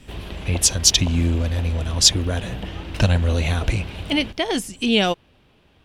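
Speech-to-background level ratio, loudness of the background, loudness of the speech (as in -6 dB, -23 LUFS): 14.5 dB, -34.5 LUFS, -20.0 LUFS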